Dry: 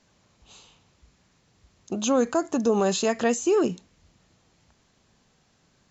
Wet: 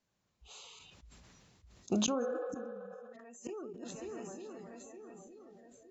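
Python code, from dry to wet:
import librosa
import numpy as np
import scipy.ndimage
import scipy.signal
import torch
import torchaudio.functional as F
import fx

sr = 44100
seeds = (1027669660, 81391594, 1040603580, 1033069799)

y = fx.reverse_delay(x, sr, ms=113, wet_db=-6.5)
y = fx.lowpass(y, sr, hz=fx.line((1.99, 6800.0), (3.18, 4000.0)), slope=12, at=(1.99, 3.18), fade=0.02)
y = fx.echo_swing(y, sr, ms=915, ratio=1.5, feedback_pct=41, wet_db=-23.5)
y = fx.dynamic_eq(y, sr, hz=1100.0, q=0.73, threshold_db=-32.0, ratio=4.0, max_db=3)
y = fx.gate_flip(y, sr, shuts_db=-18.0, range_db=-33)
y = fx.noise_reduce_blind(y, sr, reduce_db=17)
y = fx.spec_repair(y, sr, seeds[0], start_s=2.25, length_s=0.86, low_hz=330.0, high_hz=5100.0, source='before')
y = fx.sustainer(y, sr, db_per_s=20.0)
y = F.gain(torch.from_numpy(y), -2.0).numpy()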